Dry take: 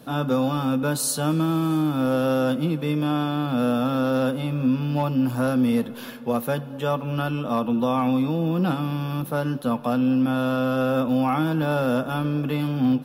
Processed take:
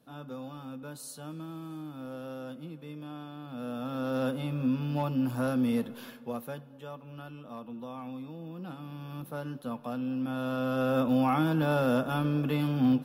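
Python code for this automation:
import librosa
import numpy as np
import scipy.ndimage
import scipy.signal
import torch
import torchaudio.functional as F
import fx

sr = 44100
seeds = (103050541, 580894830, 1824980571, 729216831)

y = fx.gain(x, sr, db=fx.line((3.41, -19.0), (4.27, -7.0), (5.9, -7.0), (6.9, -19.0), (8.64, -19.0), (9.22, -12.5), (10.12, -12.5), (11.04, -4.0)))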